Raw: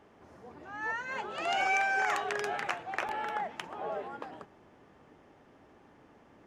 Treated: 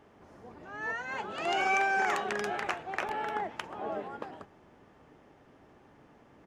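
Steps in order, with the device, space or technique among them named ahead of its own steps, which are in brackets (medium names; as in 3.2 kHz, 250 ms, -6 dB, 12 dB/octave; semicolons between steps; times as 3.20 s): octave pedal (harmony voices -12 st -8 dB)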